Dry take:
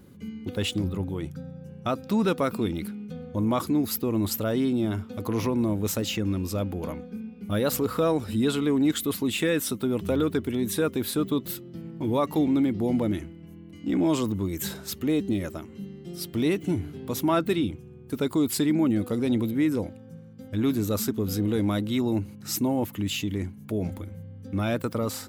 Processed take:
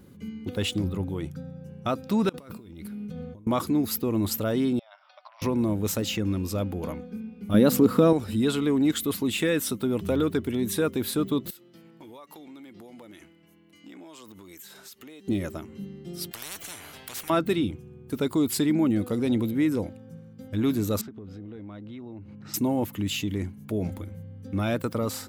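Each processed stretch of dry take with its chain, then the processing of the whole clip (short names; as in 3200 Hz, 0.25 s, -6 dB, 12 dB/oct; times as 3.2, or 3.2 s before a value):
2.29–3.47 bell 63 Hz +5 dB 2.4 oct + negative-ratio compressor -36 dBFS + resonator 200 Hz, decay 0.58 s, mix 50%
4.79–5.42 compressor 12:1, threshold -37 dBFS + brick-wall FIR band-pass 550–5800 Hz
7.54–8.13 HPF 89 Hz + bell 230 Hz +11.5 dB 1.5 oct
11.5–15.28 HPF 1100 Hz 6 dB/oct + compressor 12:1, threshold -42 dBFS
16.31–17.3 bell 15000 Hz +5.5 dB 1.4 oct + spectral compressor 10:1
21.01–22.54 LPF 2600 Hz + compressor, threshold -39 dBFS
whole clip: dry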